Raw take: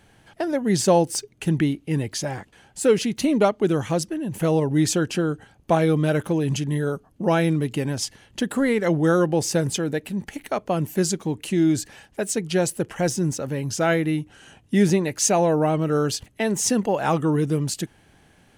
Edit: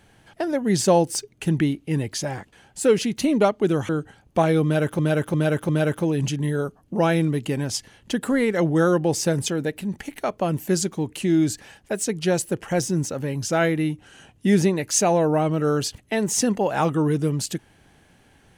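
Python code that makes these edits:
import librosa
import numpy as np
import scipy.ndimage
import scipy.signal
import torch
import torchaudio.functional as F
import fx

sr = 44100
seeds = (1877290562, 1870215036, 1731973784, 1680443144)

y = fx.edit(x, sr, fx.cut(start_s=3.89, length_s=1.33),
    fx.repeat(start_s=5.97, length_s=0.35, count=4), tone=tone)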